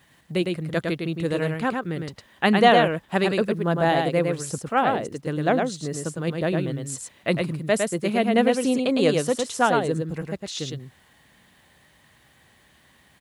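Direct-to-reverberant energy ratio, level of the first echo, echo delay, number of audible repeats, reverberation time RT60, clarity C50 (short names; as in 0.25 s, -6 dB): none, -4.0 dB, 0.107 s, 1, none, none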